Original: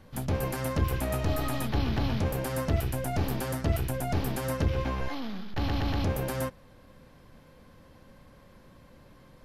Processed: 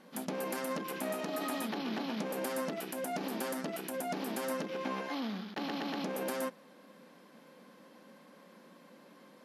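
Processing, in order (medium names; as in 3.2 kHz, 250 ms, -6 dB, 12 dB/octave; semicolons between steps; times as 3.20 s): peak limiter -25 dBFS, peak gain reduction 10 dB; brick-wall FIR band-pass 170–13000 Hz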